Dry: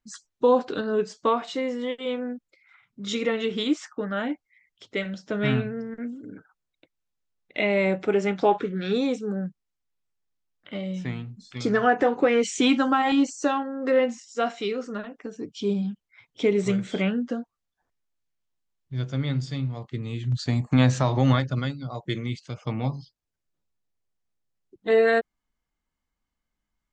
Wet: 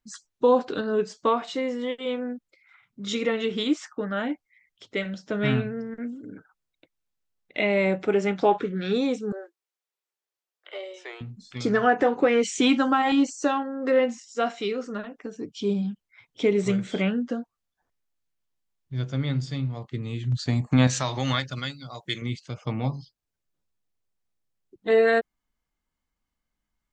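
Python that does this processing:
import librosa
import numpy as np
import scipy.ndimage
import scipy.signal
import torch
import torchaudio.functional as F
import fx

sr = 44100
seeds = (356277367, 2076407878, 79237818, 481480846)

y = fx.steep_highpass(x, sr, hz=340.0, slope=96, at=(9.32, 11.21))
y = fx.tilt_shelf(y, sr, db=-8.0, hz=1400.0, at=(20.87, 22.22))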